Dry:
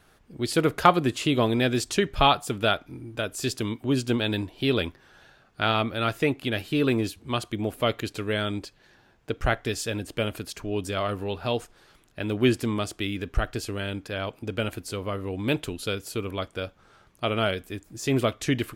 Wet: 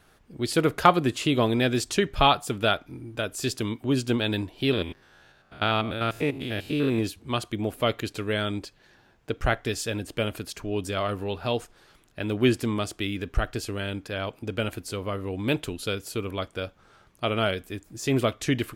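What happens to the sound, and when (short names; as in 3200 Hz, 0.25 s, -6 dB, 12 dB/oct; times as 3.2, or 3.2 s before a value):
4.73–6.99 stepped spectrum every 0.1 s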